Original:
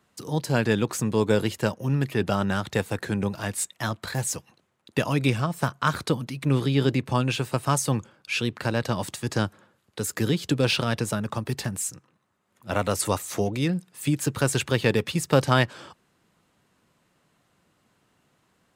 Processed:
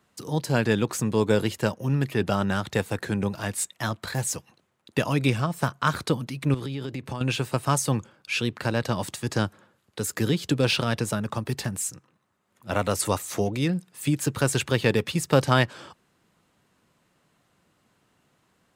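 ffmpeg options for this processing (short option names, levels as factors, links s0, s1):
-filter_complex "[0:a]asettb=1/sr,asplit=3[s0][s1][s2];[s0]atrim=end=6.544[s3];[s1]atrim=start=6.54:end=7.21,asetpts=PTS-STARTPTS,afade=t=in:d=0.004:c=qsin,afade=t=out:st=0.666:d=0.004:c=qsin,acompressor=threshold=0.0398:ratio=8:attack=3.2:release=140:knee=1:detection=peak[s4];[s2]atrim=start=7.206[s5];[s3][s4]acrossfade=d=0.004:c1=hsin:c2=qsin[s6];[s6][s5]acrossfade=d=0.004:c1=qsin:c2=hsin"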